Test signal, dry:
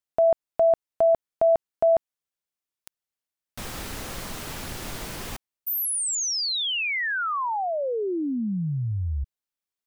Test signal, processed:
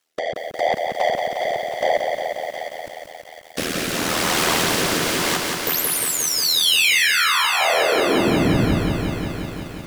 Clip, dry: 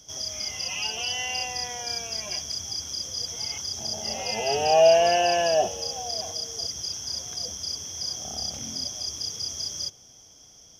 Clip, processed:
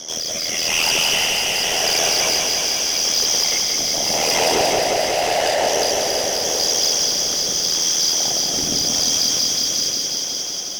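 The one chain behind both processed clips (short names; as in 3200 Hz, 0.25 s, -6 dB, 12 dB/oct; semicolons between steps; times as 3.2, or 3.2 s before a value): HPF 200 Hz 24 dB/oct; low shelf 340 Hz +11.5 dB; compressor 6:1, threshold -25 dBFS; overdrive pedal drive 25 dB, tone 6500 Hz, clips at -12 dBFS; whisperiser; soft clip -19.5 dBFS; AM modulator 81 Hz, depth 60%; rotary speaker horn 0.85 Hz; thin delay 0.725 s, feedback 32%, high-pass 1400 Hz, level -9 dB; lo-fi delay 0.178 s, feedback 80%, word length 9-bit, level -4.5 dB; gain +8.5 dB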